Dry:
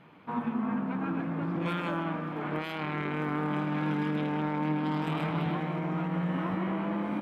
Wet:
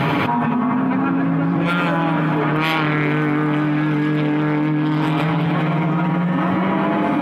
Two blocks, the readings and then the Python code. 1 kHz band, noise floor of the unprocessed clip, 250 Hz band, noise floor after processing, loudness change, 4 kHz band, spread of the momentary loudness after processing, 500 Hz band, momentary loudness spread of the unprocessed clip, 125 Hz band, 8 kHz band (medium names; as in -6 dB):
+13.0 dB, -37 dBFS, +13.0 dB, -19 dBFS, +13.0 dB, +14.5 dB, 1 LU, +12.5 dB, 4 LU, +13.5 dB, no reading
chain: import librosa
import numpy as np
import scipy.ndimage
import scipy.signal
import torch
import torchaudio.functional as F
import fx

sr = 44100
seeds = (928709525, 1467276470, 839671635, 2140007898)

p1 = x + 0.59 * np.pad(x, (int(7.2 * sr / 1000.0), 0))[:len(x)]
p2 = p1 + fx.echo_single(p1, sr, ms=403, db=-14.0, dry=0)
p3 = fx.env_flatten(p2, sr, amount_pct=100)
y = F.gain(torch.from_numpy(p3), 6.5).numpy()